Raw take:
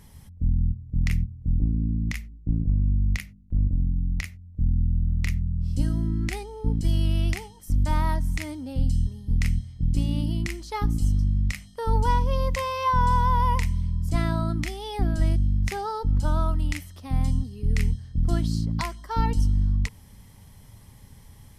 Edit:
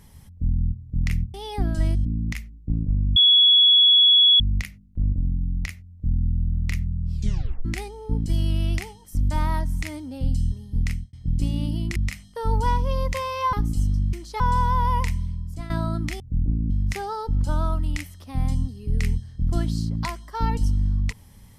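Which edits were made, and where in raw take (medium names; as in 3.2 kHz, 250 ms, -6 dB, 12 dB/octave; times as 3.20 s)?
1.34–1.84 s: swap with 14.75–15.46 s
2.95 s: add tone 3.37 kHz -11.5 dBFS 1.24 s
5.68 s: tape stop 0.52 s
9.37–9.68 s: fade out
10.51–10.78 s: swap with 11.38–12.95 s
13.67–14.25 s: fade out linear, to -14 dB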